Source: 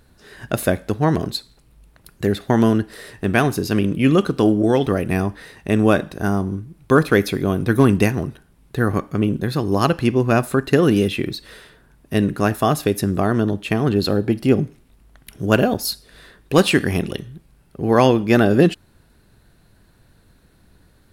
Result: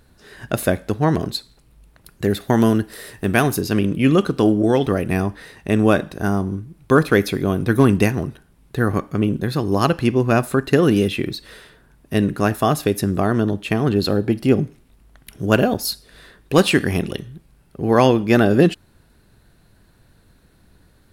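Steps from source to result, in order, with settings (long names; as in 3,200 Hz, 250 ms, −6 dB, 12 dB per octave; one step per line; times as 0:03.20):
0:02.30–0:03.61: high-shelf EQ 10,000 Hz +12 dB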